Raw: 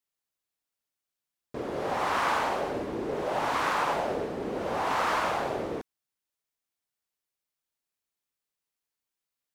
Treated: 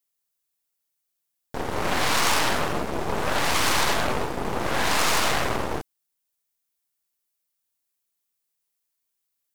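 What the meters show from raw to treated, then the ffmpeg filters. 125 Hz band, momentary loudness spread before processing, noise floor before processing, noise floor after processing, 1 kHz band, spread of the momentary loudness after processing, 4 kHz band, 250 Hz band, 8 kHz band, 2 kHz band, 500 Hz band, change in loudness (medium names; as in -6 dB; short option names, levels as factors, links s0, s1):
+9.5 dB, 8 LU, under -85 dBFS, -79 dBFS, +2.5 dB, 9 LU, +13.0 dB, +4.5 dB, +17.0 dB, +7.0 dB, +2.0 dB, +5.5 dB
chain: -af "aeval=exprs='0.178*(cos(1*acos(clip(val(0)/0.178,-1,1)))-cos(1*PI/2))+0.0631*(cos(8*acos(clip(val(0)/0.178,-1,1)))-cos(8*PI/2))':c=same,crystalizer=i=1.5:c=0"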